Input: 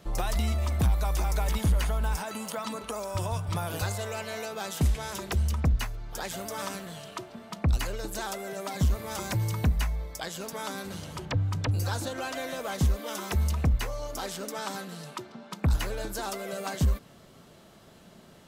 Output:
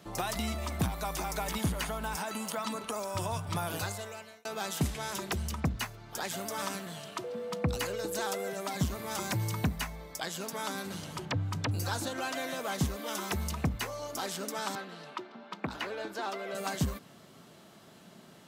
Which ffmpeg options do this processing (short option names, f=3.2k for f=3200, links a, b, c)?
-filter_complex "[0:a]asettb=1/sr,asplit=3[a][b][c];[a]atrim=end=7.244[d];[b]atrim=start=7.24:end=8.5,asetpts=PTS-STARTPTS,afade=t=in:d=0.004:c=qsin,afade=t=out:st=1.256:d=0.004:c=qsin,aeval=exprs='val(0)+0.0251*sin(2*PI*490*n/s)':c=same[e];[c]atrim=start=8.496[f];[d][e]acrossfade=d=0.004:c1=hsin:c2=qsin[g];[g][f]acrossfade=d=0.004:c1=qsin:c2=hsin,asettb=1/sr,asplit=3[h][i][j];[h]atrim=end=14.754[k];[i]atrim=start=14.75:end=16.55,asetpts=PTS-STARTPTS,afade=t=in:d=0.004:c=qsin,afade=t=out:st=1.796:d=0.004:c=qsin,acrossover=split=220 4400:gain=0.141 1 0.126[l][m][n];[l][m][n]amix=inputs=3:normalize=0[o];[j]atrim=start=16.546[p];[k][o]acrossfade=d=0.004:c1=hsin:c2=qsin[q];[q][p]acrossfade=d=0.004:c1=qsin:c2=hsin,asplit=2[r][s];[r]atrim=end=4.45,asetpts=PTS-STARTPTS,afade=t=out:st=3.7:d=0.75[t];[s]atrim=start=4.45,asetpts=PTS-STARTPTS,afade=t=in:d=0.004:c=hsin[u];[t][u]concat=n=2:v=0:a=1,highpass=130,equalizer=f=510:t=o:w=0.53:g=-3.5"